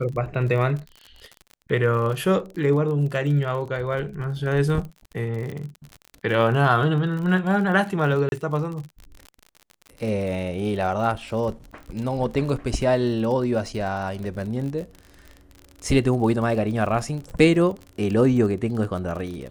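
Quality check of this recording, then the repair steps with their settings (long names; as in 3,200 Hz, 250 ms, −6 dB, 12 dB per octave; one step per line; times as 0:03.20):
surface crackle 46 per second −31 dBFS
0:08.29–0:08.32: drop-out 31 ms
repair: click removal
repair the gap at 0:08.29, 31 ms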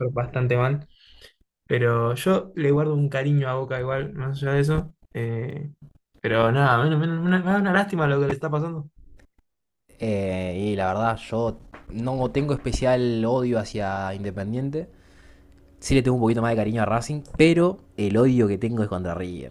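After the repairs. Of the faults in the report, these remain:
none of them is left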